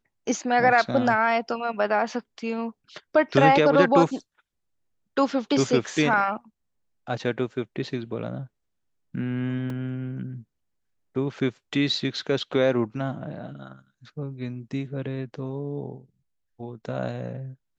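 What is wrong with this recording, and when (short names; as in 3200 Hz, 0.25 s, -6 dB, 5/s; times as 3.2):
9.7 gap 2.1 ms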